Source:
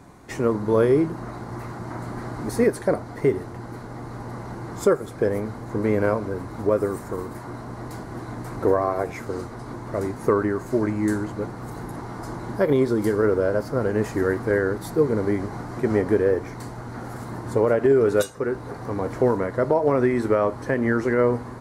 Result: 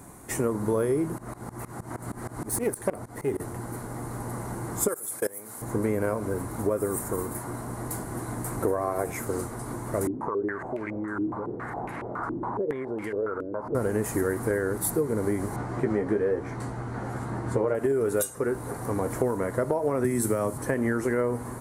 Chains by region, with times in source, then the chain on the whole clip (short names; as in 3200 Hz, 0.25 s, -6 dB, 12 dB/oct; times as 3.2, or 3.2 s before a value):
1.18–3.4 self-modulated delay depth 0.11 ms + tremolo saw up 6.4 Hz, depth 95%
4.88–5.62 RIAA curve recording + level quantiser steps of 23 dB
10.07–13.75 tilt +2 dB/oct + compressor 5:1, threshold -31 dBFS + stepped low-pass 7.2 Hz 310–2400 Hz
15.56–17.75 LPF 4000 Hz + doubler 15 ms -5 dB
20.04–20.58 HPF 93 Hz + tone controls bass +9 dB, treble +13 dB + three-band expander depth 40%
whole clip: resonant high shelf 6800 Hz +13.5 dB, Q 1.5; compressor, threshold -22 dBFS